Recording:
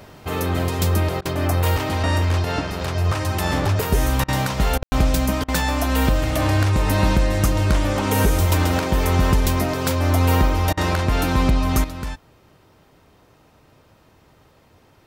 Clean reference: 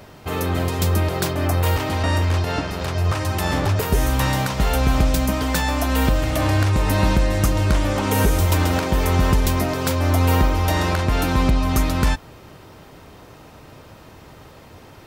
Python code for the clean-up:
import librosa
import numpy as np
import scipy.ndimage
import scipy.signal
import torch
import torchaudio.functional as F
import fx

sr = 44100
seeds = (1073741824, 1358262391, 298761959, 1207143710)

y = fx.fix_ambience(x, sr, seeds[0], print_start_s=14.47, print_end_s=14.97, start_s=4.83, end_s=4.92)
y = fx.fix_interpolate(y, sr, at_s=(1.21, 4.24, 4.78, 5.44, 10.73), length_ms=42.0)
y = fx.fix_level(y, sr, at_s=11.84, step_db=10.5)